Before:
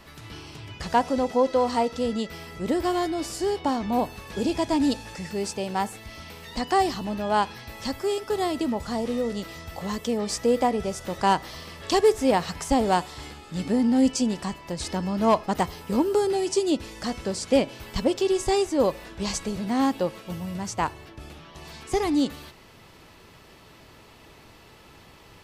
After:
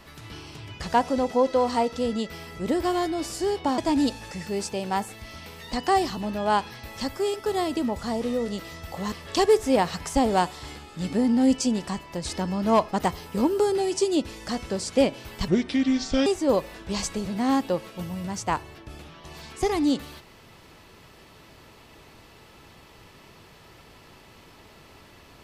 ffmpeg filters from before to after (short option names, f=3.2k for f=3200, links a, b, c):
-filter_complex "[0:a]asplit=5[a][b][c][d][e];[a]atrim=end=3.782[f];[b]atrim=start=4.618:end=9.962[g];[c]atrim=start=11.668:end=18.034[h];[d]atrim=start=18.03:end=18.57,asetpts=PTS-STARTPTS,asetrate=30429,aresample=44100,atrim=end_sample=34513,asetpts=PTS-STARTPTS[i];[e]atrim=start=18.566[j];[f][g]acrossfade=d=0.004:c1=hsin:c2=hsin[k];[k][h]acrossfade=d=0.004:c1=hsin:c2=hsin[l];[l][i]acrossfade=d=0.004:c1=hsin:c2=hsin[m];[m][j]acrossfade=d=0.004:c1=hsin:c2=hsin"